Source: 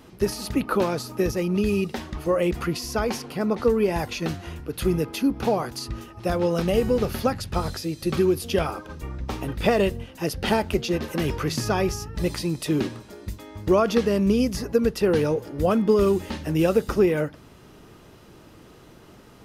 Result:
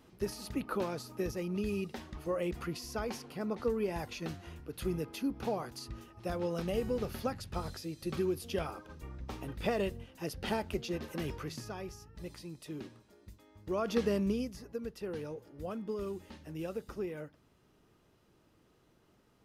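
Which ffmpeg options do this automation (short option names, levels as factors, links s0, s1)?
-af "volume=0.944,afade=t=out:st=11.21:d=0.52:silence=0.421697,afade=t=in:st=13.66:d=0.41:silence=0.266073,afade=t=out:st=14.07:d=0.47:silence=0.281838"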